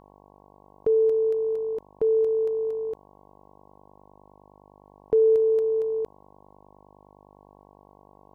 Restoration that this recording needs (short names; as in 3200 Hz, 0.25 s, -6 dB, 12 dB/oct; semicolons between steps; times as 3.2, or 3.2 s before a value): de-hum 49.8 Hz, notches 22